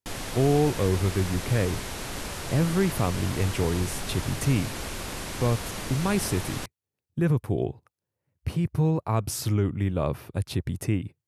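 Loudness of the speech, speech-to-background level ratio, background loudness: -27.0 LUFS, 7.0 dB, -34.0 LUFS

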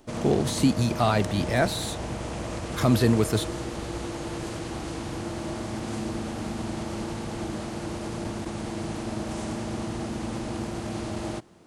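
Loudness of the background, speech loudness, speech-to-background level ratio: -33.0 LUFS, -24.5 LUFS, 8.5 dB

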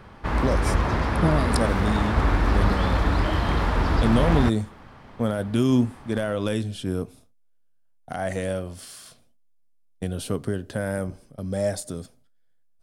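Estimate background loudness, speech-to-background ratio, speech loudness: -24.0 LUFS, -3.0 dB, -27.0 LUFS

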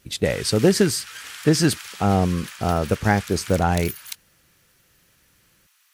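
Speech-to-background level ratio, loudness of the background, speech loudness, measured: 14.5 dB, -36.0 LUFS, -21.5 LUFS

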